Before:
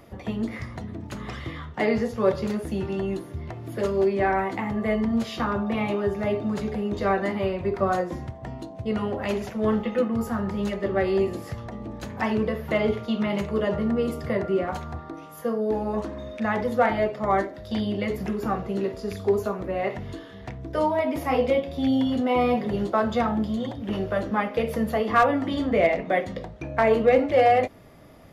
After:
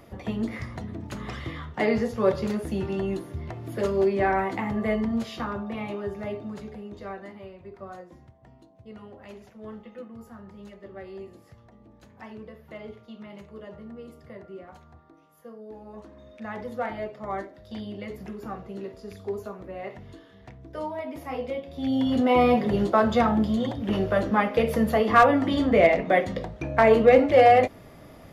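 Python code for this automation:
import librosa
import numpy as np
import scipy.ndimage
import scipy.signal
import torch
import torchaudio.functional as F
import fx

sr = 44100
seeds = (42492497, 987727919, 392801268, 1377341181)

y = fx.gain(x, sr, db=fx.line((4.82, -0.5), (5.7, -7.0), (6.23, -7.0), (7.5, -17.5), (15.76, -17.5), (16.61, -9.5), (21.61, -9.5), (22.2, 2.5)))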